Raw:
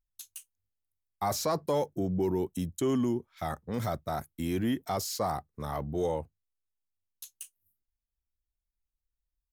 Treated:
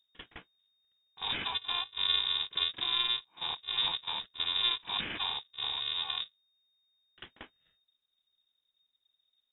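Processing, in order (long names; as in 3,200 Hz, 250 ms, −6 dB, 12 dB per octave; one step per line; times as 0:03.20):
samples in bit-reversed order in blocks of 128 samples
backwards echo 44 ms −15.5 dB
voice inversion scrambler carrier 3,700 Hz
level +5 dB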